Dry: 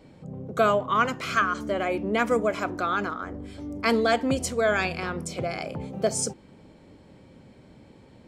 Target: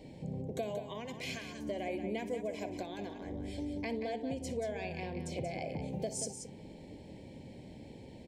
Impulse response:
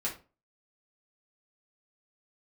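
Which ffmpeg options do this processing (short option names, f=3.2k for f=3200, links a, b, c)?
-filter_complex "[0:a]asettb=1/sr,asplit=3[a][b][c];[a]atrim=end=3.654[d];[b]atrim=start=3.65:end=5.82,asetpts=PTS-STARTPTS,afade=t=in:d=0.004:c=qsin,afade=t=out:st=2.166:d=0.004:c=qsin,highshelf=f=3.6k:g=-10.5[e];[c]atrim=start=5.816[f];[d][e]acrossfade=d=0.004:c1=hsin:c2=qsin[g];[g][f]acrossfade=d=0.004:c1=qsin:c2=hsin,acompressor=threshold=-37dB:ratio=5,asuperstop=centerf=1300:order=4:qfactor=1.3,aecho=1:1:60|181:0.158|0.376,volume=1dB"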